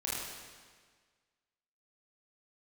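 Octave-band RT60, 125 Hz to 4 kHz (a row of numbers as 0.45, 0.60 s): 1.6, 1.6, 1.6, 1.6, 1.6, 1.5 s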